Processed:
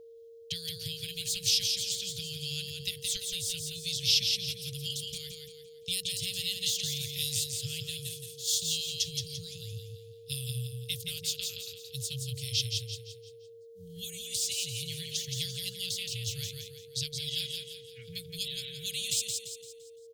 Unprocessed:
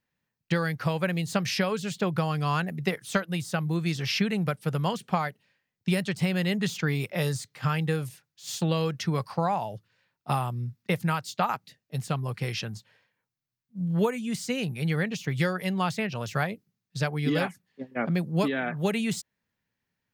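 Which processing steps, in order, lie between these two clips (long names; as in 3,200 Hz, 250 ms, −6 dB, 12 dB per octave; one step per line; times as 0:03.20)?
Chebyshev band-stop filter 100–3,300 Hz, order 4
repeating echo 171 ms, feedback 40%, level −4.5 dB
steady tone 460 Hz −56 dBFS
level +7.5 dB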